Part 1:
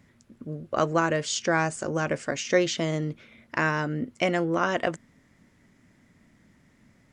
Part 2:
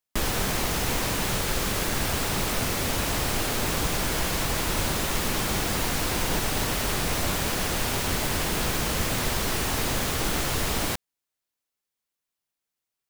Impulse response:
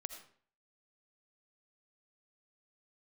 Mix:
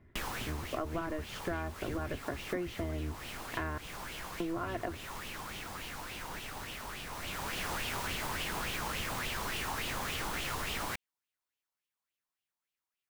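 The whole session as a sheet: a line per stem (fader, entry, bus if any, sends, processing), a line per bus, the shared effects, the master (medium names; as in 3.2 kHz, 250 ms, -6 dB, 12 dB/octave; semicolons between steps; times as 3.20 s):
-5.0 dB, 0.00 s, muted 3.78–4.40 s, no send, octave divider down 1 oct, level +3 dB; low-pass 2 kHz 12 dB/octave; comb 2.9 ms, depth 49%
-8.5 dB, 0.00 s, no send, sweeping bell 3.5 Hz 900–3000 Hz +13 dB; auto duck -11 dB, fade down 0.65 s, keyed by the first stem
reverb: none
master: compression, threshold -33 dBFS, peak gain reduction 11.5 dB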